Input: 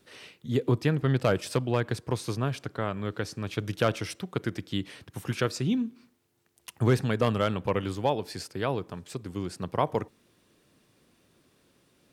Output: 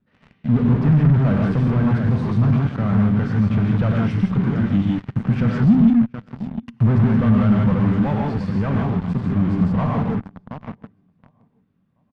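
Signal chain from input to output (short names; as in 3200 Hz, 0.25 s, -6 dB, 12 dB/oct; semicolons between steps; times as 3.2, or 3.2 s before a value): resonator 390 Hz, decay 0.35 s, harmonics all, mix 60%; on a send: feedback echo 0.726 s, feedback 34%, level -16.5 dB; on the sum: non-linear reverb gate 0.19 s rising, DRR 1.5 dB; in parallel at -7 dB: fuzz box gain 48 dB, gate -46 dBFS; on the sum: LPF 1700 Hz 12 dB/oct; resonant low shelf 280 Hz +8 dB, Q 3; gain -3.5 dB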